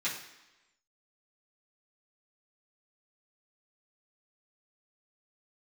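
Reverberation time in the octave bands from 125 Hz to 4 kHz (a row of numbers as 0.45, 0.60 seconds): 0.85, 0.95, 1.0, 1.0, 1.1, 1.0 seconds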